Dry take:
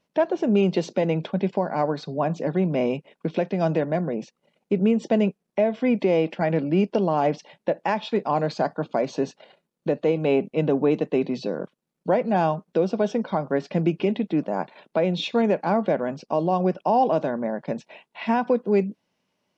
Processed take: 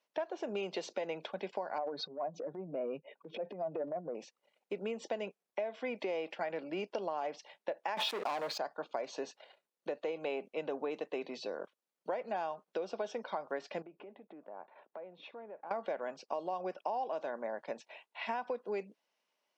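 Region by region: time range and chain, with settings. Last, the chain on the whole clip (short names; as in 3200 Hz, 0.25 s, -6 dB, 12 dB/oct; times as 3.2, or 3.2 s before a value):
1.78–4.15 spectral contrast raised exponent 1.8 + transient shaper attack -9 dB, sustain +8 dB
7.97–8.58 sample leveller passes 3 + backwards sustainer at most 21 dB/s
13.82–15.71 LPF 1300 Hz + compressor 3:1, threshold -38 dBFS
whole clip: HPF 560 Hz 12 dB/oct; compressor, threshold -27 dBFS; gain -6 dB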